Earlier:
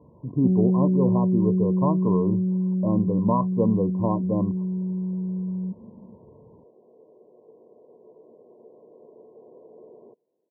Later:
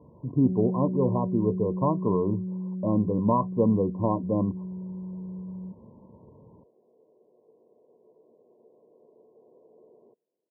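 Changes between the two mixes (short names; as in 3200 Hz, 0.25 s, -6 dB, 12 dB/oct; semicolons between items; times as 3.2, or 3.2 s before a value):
first sound -9.0 dB; second sound -8.5 dB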